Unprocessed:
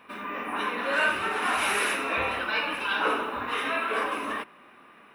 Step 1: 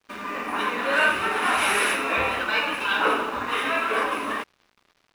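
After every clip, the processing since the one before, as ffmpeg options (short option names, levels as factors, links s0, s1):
-af "aeval=exprs='sgn(val(0))*max(abs(val(0))-0.00398,0)':c=same,volume=1.68"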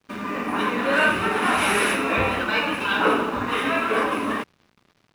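-af "equalizer=f=140:t=o:w=2.6:g=12"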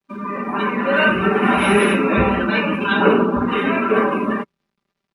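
-filter_complex "[0:a]afftdn=nr=17:nf=-30,aecho=1:1:5.1:0.62,acrossover=split=420|1100[s0][s1][s2];[s0]dynaudnorm=f=210:g=11:m=2.99[s3];[s3][s1][s2]amix=inputs=3:normalize=0,volume=1.12"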